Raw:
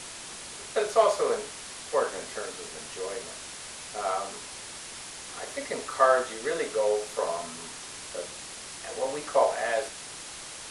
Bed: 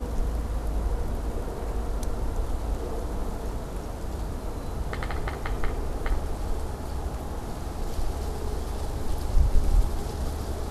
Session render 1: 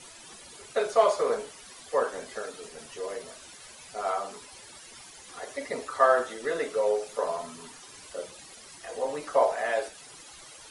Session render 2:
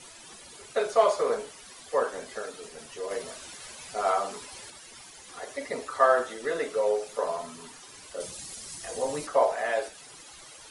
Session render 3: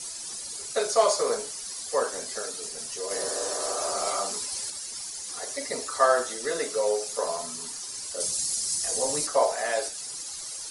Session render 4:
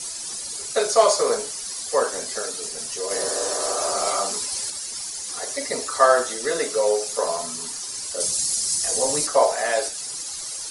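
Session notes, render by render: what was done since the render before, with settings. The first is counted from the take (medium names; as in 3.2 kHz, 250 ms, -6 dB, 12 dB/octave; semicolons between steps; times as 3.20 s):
noise reduction 13 dB, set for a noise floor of -42 dBFS
3.11–4.70 s: gain +4 dB; 8.20–9.27 s: tone controls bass +9 dB, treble +9 dB
3.19–4.16 s: spectral replace 250–1900 Hz both; high-order bell 7 kHz +13.5 dB
trim +5 dB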